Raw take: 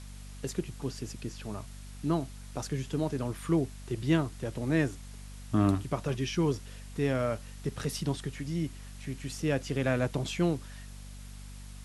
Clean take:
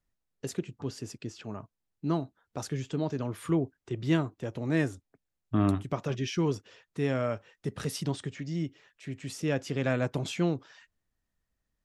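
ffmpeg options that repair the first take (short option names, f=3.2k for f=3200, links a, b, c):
-af "bandreject=f=48.7:t=h:w=4,bandreject=f=97.4:t=h:w=4,bandreject=f=146.1:t=h:w=4,bandreject=f=194.8:t=h:w=4,bandreject=f=243.5:t=h:w=4,afwtdn=0.0022"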